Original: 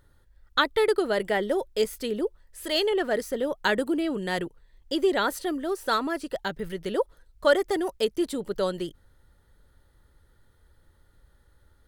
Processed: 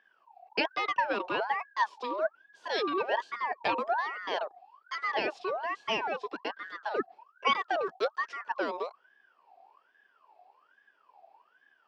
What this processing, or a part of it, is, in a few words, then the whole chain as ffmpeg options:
voice changer toy: -af "aeval=exprs='val(0)*sin(2*PI*1200*n/s+1200*0.4/1.2*sin(2*PI*1.2*n/s))':c=same,highpass=410,equalizer=f=410:t=q:w=4:g=5,equalizer=f=630:t=q:w=4:g=4,equalizer=f=930:t=q:w=4:g=4,equalizer=f=1300:t=q:w=4:g=-9,equalizer=f=2100:t=q:w=4:g=-9,equalizer=f=3700:t=q:w=4:g=-4,lowpass=f=4300:w=0.5412,lowpass=f=4300:w=1.3066"

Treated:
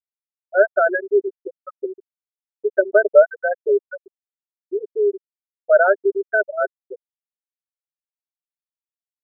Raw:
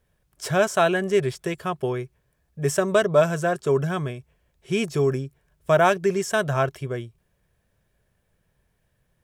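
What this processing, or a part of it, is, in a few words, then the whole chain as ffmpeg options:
phone earpiece: -af "highpass=390,equalizer=f=410:t=q:w=4:g=7,equalizer=f=590:t=q:w=4:g=9,equalizer=f=1000:t=q:w=4:g=-9,equalizer=f=1500:t=q:w=4:g=10,equalizer=f=3100:t=q:w=4:g=7,lowpass=f=3800:w=0.5412,lowpass=f=3800:w=1.3066,afftfilt=real='re*gte(hypot(re,im),0.562)':imag='im*gte(hypot(re,im),0.562)':win_size=1024:overlap=0.75,volume=0.891"

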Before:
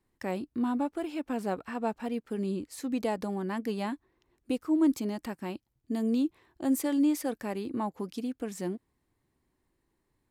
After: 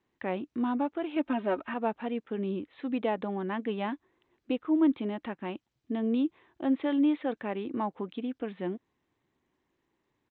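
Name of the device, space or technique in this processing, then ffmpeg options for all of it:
Bluetooth headset: -filter_complex "[0:a]asettb=1/sr,asplit=3[s0][s1][s2];[s0]atrim=end=1.164[s3];[s1]atrim=start=1.16:end=1.74,asetpts=PTS-STARTPTS,afade=t=in:d=0.004:c=qsin,afade=t=out:st=0.576:d=0.004:c=qsin,aecho=1:1:3.2:0.9,atrim=end_sample=25578[s4];[s2]atrim=start=1.736[s5];[s3][s4]acrossfade=d=0.004:c1=hsin:c2=qsin[s6];[s6][s5]acrossfade=d=0.004:c1=qsin:c2=hsin,highpass=f=210:p=1,aresample=8000,aresample=44100,volume=1.26" -ar 16000 -c:a sbc -b:a 64k

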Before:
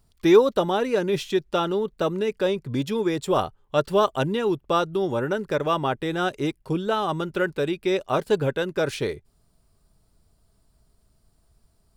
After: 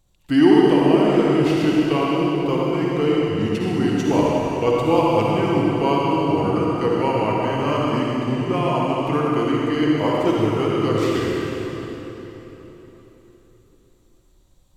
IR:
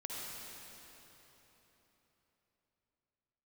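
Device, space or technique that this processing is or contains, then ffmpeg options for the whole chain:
slowed and reverbed: -filter_complex "[0:a]asetrate=35721,aresample=44100[s0];[1:a]atrim=start_sample=2205[s1];[s0][s1]afir=irnorm=-1:irlink=0,volume=1.58"

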